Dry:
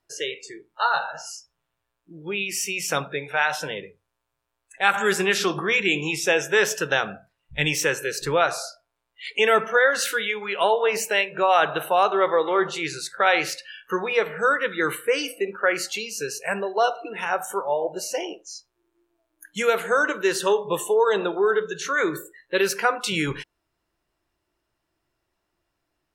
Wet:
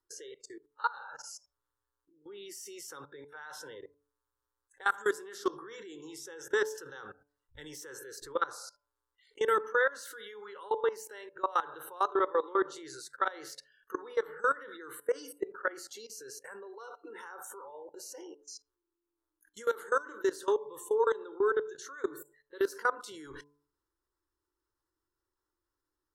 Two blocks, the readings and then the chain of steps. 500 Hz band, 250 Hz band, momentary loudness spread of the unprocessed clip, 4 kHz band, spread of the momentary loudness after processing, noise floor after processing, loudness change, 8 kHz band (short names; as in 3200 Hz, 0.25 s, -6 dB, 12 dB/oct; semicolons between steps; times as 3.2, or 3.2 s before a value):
-10.5 dB, -12.5 dB, 12 LU, -19.5 dB, 18 LU, under -85 dBFS, -10.5 dB, -15.0 dB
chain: fixed phaser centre 670 Hz, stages 6; level quantiser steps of 21 dB; de-hum 145 Hz, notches 7; gain -4 dB